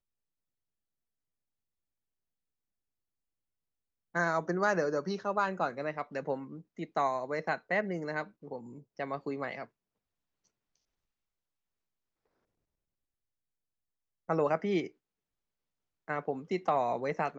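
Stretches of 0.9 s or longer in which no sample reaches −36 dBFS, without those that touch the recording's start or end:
0:09.63–0:14.29
0:14.87–0:16.08

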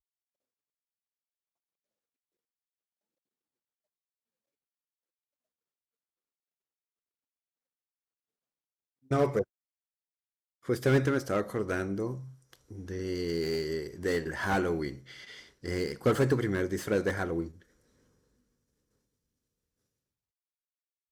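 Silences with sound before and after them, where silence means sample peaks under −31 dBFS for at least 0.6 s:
0:09.42–0:10.69
0:12.13–0:12.90
0:14.91–0:15.66

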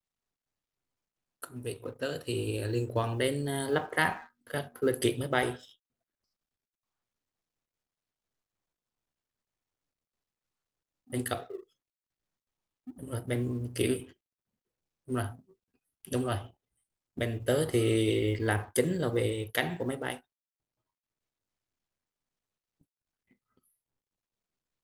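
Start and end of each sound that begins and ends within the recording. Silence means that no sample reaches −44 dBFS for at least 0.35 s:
0:01.42–0:05.71
0:11.10–0:11.60
0:12.87–0:14.11
0:15.08–0:15.39
0:16.05–0:16.47
0:17.17–0:20.18

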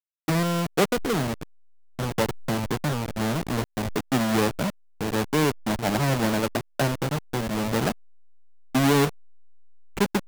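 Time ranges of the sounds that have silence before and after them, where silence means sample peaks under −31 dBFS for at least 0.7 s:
0:08.75–0:09.09

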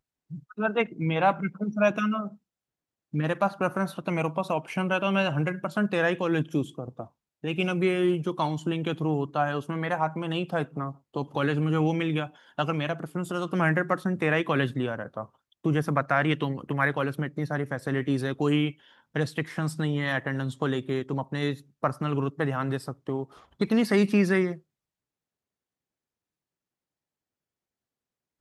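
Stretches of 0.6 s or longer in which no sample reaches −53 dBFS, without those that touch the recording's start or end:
0:02.36–0:03.13

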